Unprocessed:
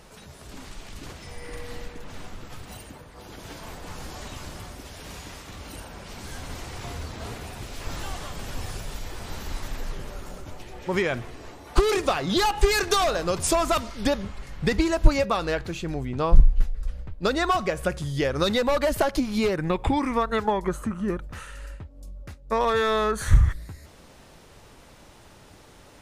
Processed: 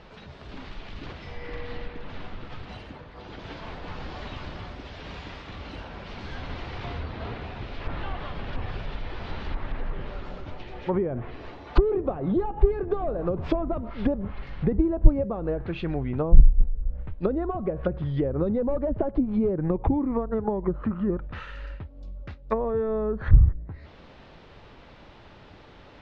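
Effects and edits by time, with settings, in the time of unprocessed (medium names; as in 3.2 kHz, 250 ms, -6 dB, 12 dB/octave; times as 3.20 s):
7.01–8.53 s: low-pass 4 kHz 6 dB/octave
whole clip: low-pass 4 kHz 24 dB/octave; low-pass that closes with the level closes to 450 Hz, closed at -21 dBFS; trim +1.5 dB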